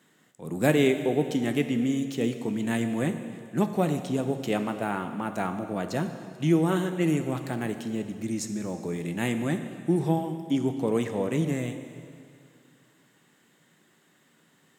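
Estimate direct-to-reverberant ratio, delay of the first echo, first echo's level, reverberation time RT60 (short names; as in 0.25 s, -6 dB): 7.5 dB, none, none, 2.4 s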